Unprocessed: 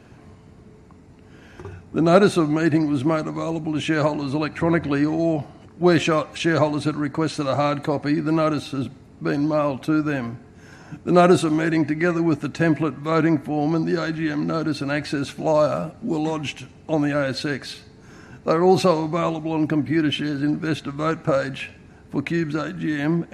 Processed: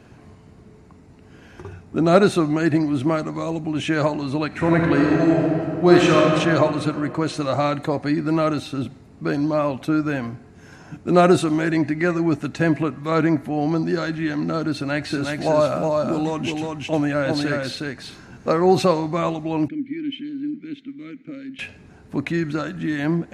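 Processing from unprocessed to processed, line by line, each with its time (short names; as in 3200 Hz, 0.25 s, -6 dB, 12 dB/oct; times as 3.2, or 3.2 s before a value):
4.47–6.28 reverb throw, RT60 2.7 s, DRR -2 dB
14.74–18.75 echo 0.364 s -3.5 dB
19.68–21.59 vowel filter i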